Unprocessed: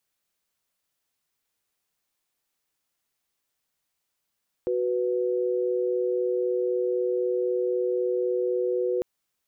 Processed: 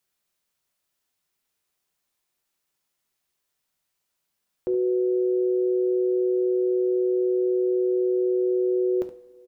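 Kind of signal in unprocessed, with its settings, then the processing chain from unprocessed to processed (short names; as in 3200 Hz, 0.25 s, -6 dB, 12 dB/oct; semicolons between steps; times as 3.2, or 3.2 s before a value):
chord F#4/B4 sine, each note -25.5 dBFS 4.35 s
echo 71 ms -13.5 dB; two-slope reverb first 0.37 s, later 2.1 s, from -17 dB, DRR 7.5 dB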